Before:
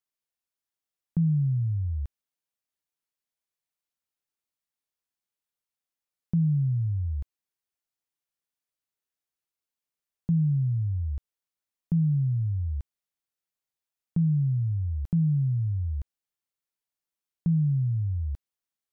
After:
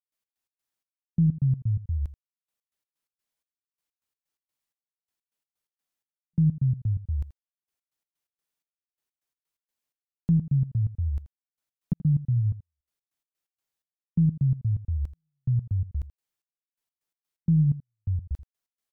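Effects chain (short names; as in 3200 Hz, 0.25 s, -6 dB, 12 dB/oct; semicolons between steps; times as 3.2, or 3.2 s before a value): tracing distortion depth 0.11 ms; step gate ".x.x.xx...x" 127 bpm -60 dB; echo 82 ms -16 dB; gain +3 dB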